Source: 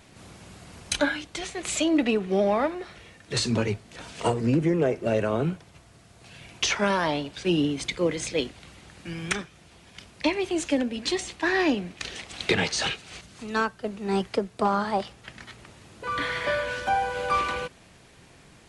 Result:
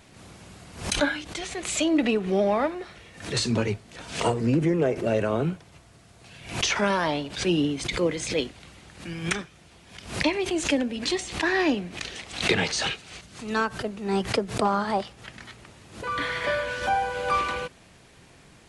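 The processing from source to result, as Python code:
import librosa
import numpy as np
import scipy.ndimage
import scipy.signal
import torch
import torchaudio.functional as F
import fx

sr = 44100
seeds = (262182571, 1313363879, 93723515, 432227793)

y = fx.pre_swell(x, sr, db_per_s=110.0)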